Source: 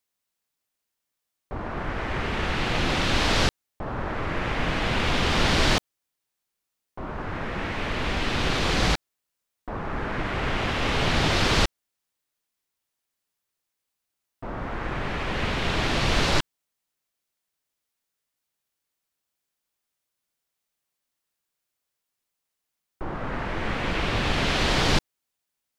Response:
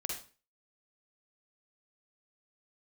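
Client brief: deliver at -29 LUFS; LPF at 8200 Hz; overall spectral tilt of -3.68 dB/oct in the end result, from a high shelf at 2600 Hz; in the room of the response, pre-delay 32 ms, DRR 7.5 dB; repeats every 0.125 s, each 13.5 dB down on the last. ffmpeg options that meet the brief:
-filter_complex "[0:a]lowpass=8.2k,highshelf=f=2.6k:g=4.5,aecho=1:1:125|250:0.211|0.0444,asplit=2[a][b];[1:a]atrim=start_sample=2205,adelay=32[c];[b][c]afir=irnorm=-1:irlink=0,volume=-8.5dB[d];[a][d]amix=inputs=2:normalize=0,volume=-5.5dB"

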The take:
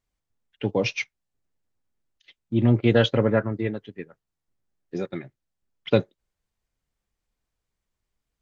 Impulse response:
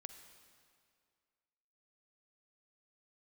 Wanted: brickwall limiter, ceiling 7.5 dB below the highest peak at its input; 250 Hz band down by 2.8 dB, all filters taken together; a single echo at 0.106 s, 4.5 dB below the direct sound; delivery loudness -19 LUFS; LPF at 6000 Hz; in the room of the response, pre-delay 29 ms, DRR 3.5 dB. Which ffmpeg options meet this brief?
-filter_complex "[0:a]lowpass=6k,equalizer=f=250:t=o:g=-3.5,alimiter=limit=-13dB:level=0:latency=1,aecho=1:1:106:0.596,asplit=2[a][b];[1:a]atrim=start_sample=2205,adelay=29[c];[b][c]afir=irnorm=-1:irlink=0,volume=2dB[d];[a][d]amix=inputs=2:normalize=0,volume=7dB"

